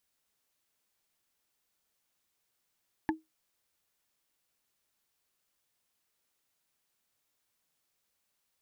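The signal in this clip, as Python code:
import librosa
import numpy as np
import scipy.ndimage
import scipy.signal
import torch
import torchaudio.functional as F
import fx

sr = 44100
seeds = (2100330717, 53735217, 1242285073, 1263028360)

y = fx.strike_wood(sr, length_s=0.45, level_db=-23.0, body='bar', hz=317.0, decay_s=0.18, tilt_db=1.5, modes=3)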